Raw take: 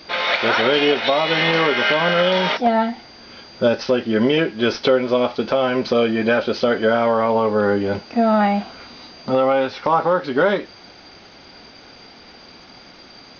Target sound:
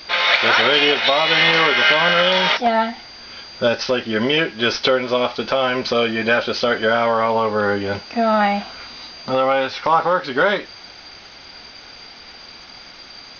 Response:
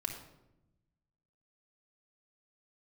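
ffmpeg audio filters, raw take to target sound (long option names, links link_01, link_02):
-af "equalizer=frequency=250:width=0.34:gain=-10,volume=6dB"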